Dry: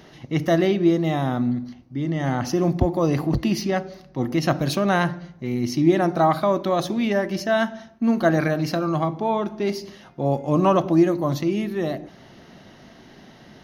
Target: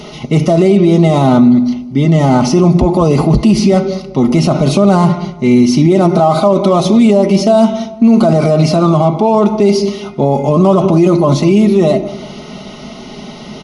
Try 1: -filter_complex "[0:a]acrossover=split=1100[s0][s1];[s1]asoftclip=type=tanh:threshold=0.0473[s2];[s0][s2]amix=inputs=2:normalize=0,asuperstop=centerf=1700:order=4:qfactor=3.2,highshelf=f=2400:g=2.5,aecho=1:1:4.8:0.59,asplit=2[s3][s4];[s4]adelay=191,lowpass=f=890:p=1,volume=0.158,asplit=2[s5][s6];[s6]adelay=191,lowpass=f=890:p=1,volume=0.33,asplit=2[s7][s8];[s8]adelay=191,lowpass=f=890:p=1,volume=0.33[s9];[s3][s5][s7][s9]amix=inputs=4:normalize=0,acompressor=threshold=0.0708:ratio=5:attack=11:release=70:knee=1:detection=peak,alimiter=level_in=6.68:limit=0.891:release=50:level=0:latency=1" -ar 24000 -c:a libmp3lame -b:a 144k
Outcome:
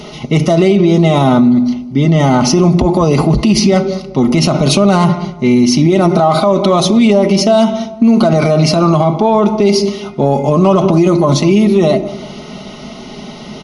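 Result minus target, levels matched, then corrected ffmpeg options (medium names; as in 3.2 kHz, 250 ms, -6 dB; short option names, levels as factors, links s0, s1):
compression: peak gain reduction +10 dB; saturation: distortion -8 dB
-filter_complex "[0:a]acrossover=split=1100[s0][s1];[s1]asoftclip=type=tanh:threshold=0.0119[s2];[s0][s2]amix=inputs=2:normalize=0,asuperstop=centerf=1700:order=4:qfactor=3.2,highshelf=f=2400:g=2.5,aecho=1:1:4.8:0.59,asplit=2[s3][s4];[s4]adelay=191,lowpass=f=890:p=1,volume=0.158,asplit=2[s5][s6];[s6]adelay=191,lowpass=f=890:p=1,volume=0.33,asplit=2[s7][s8];[s8]adelay=191,lowpass=f=890:p=1,volume=0.33[s9];[s3][s5][s7][s9]amix=inputs=4:normalize=0,alimiter=level_in=6.68:limit=0.891:release=50:level=0:latency=1" -ar 24000 -c:a libmp3lame -b:a 144k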